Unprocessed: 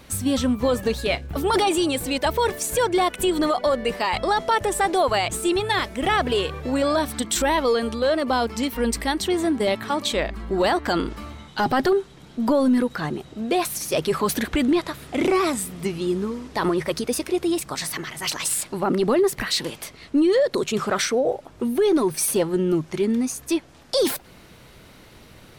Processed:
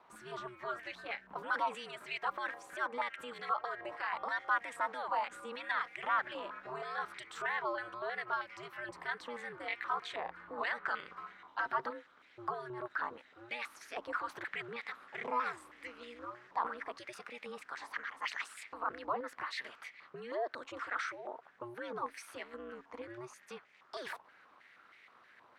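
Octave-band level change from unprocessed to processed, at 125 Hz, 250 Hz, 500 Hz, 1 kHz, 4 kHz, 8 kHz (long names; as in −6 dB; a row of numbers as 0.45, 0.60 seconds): −28.5, −30.5, −22.5, −12.0, −21.0, −30.0 decibels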